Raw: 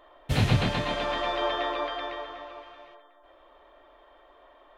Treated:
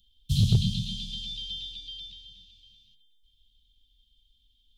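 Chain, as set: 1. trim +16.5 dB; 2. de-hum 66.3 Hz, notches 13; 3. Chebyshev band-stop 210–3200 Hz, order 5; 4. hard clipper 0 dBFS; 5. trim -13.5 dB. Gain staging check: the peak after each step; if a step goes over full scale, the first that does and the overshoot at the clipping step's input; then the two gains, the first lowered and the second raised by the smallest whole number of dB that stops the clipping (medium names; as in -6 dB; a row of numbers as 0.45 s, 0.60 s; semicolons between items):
+5.5 dBFS, +6.0 dBFS, +4.0 dBFS, 0.0 dBFS, -13.5 dBFS; step 1, 4.0 dB; step 1 +12.5 dB, step 5 -9.5 dB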